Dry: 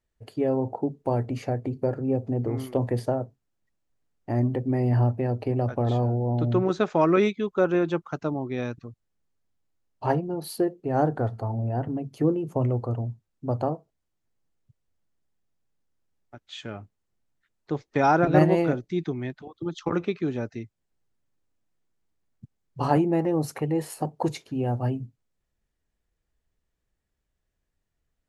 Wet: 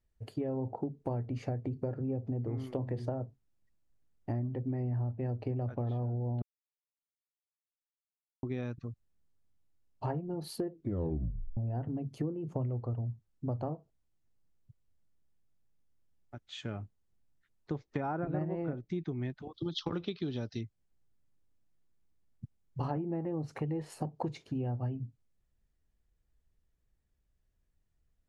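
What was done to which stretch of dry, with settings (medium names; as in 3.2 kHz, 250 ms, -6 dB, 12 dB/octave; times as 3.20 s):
2.69–3.12 s: hum notches 60/120/180/240/300/360 Hz
6.42–8.43 s: mute
10.72 s: tape stop 0.85 s
19.54–20.61 s: high-order bell 4.1 kHz +16 dB 1.1 oct
whole clip: low-pass that closes with the level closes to 1.8 kHz, closed at -18 dBFS; bass shelf 200 Hz +9.5 dB; compression 6:1, threshold -27 dBFS; trim -5 dB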